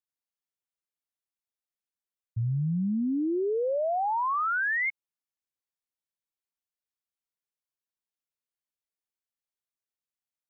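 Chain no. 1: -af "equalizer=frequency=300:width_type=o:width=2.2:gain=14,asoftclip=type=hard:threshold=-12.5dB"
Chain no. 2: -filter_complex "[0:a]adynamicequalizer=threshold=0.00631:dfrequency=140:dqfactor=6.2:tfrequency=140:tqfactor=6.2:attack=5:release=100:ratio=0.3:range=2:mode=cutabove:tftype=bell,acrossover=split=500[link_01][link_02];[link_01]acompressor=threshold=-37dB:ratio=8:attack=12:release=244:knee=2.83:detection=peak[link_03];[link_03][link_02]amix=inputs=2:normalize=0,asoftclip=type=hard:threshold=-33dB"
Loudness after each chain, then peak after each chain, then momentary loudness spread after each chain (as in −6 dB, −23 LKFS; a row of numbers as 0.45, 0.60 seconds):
−19.5, −35.0 LKFS; −12.5, −33.0 dBFS; 12, 8 LU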